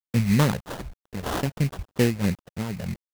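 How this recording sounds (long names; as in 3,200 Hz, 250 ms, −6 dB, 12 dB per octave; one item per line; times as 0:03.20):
a quantiser's noise floor 8 bits, dither none
phaser sweep stages 12, 3.1 Hz, lowest notch 300–4,600 Hz
aliases and images of a low sample rate 2,300 Hz, jitter 20%
amplitude modulation by smooth noise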